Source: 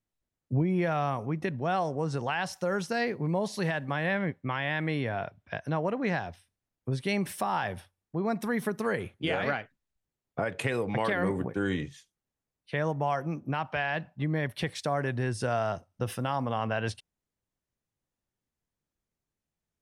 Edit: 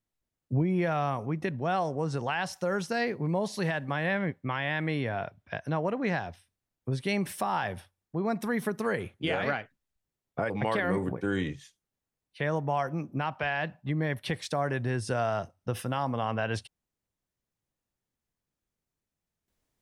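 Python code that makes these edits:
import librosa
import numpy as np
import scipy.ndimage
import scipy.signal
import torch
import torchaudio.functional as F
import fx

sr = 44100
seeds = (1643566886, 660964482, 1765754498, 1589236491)

y = fx.edit(x, sr, fx.cut(start_s=10.5, length_s=0.33), tone=tone)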